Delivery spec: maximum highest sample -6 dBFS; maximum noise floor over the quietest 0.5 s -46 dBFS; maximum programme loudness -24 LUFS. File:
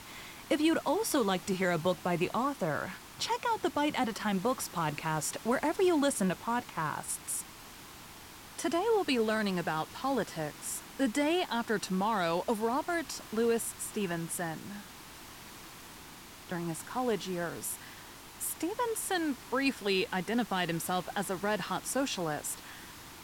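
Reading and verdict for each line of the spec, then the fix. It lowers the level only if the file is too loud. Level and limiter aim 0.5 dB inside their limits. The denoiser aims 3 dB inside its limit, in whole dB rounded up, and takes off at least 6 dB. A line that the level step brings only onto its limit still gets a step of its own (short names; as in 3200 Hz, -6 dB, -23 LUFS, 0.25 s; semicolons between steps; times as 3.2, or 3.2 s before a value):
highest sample -15.5 dBFS: OK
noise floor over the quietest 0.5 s -50 dBFS: OK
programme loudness -32.5 LUFS: OK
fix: none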